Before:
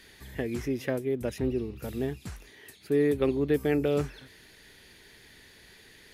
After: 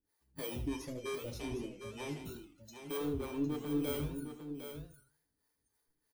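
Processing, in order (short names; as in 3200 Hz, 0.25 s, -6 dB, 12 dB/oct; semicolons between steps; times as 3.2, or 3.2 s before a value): FFT order left unsorted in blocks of 16 samples; spectral noise reduction 28 dB; 0.6–2.17 LPF 8100 Hz 12 dB/oct; 2.97–3.79 tilt -2 dB/oct; compressor, threshold -25 dBFS, peak gain reduction 7.5 dB; limiter -27 dBFS, peak gain reduction 9 dB; hard clip -33.5 dBFS, distortion -12 dB; harmonic tremolo 3.2 Hz, depth 100%, crossover 430 Hz; echo 0.757 s -8.5 dB; FDN reverb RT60 0.35 s, low-frequency decay 0.8×, high-frequency decay 0.8×, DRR 3.5 dB; warbling echo 81 ms, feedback 35%, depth 220 cents, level -10.5 dB; gain +2 dB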